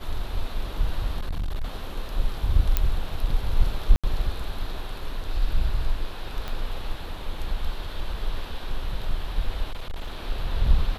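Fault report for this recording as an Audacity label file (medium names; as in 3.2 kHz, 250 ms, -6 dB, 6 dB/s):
1.190000	1.640000	clipped -24 dBFS
2.770000	2.770000	pop -7 dBFS
3.960000	4.040000	dropout 76 ms
6.480000	6.480000	pop -18 dBFS
9.710000	10.170000	clipped -27 dBFS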